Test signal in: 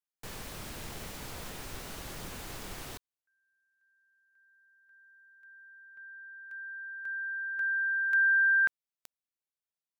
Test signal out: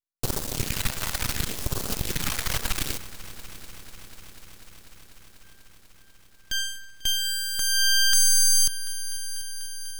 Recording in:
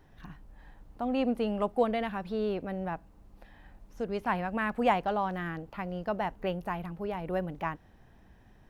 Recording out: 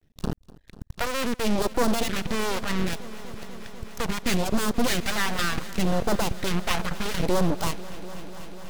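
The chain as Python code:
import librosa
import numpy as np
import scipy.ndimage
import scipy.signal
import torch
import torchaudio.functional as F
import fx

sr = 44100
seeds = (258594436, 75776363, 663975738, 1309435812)

p1 = fx.self_delay(x, sr, depth_ms=0.54)
p2 = fx.dereverb_blind(p1, sr, rt60_s=1.7)
p3 = fx.peak_eq(p2, sr, hz=770.0, db=-6.5, octaves=0.73)
p4 = fx.fuzz(p3, sr, gain_db=51.0, gate_db=-46.0)
p5 = p3 + (p4 * 10.0 ** (-3.0 / 20.0))
p6 = fx.phaser_stages(p5, sr, stages=2, low_hz=270.0, high_hz=2200.0, hz=0.7, feedback_pct=5)
p7 = np.maximum(p6, 0.0)
y = fx.echo_heads(p7, sr, ms=246, heads='all three', feedback_pct=73, wet_db=-22.0)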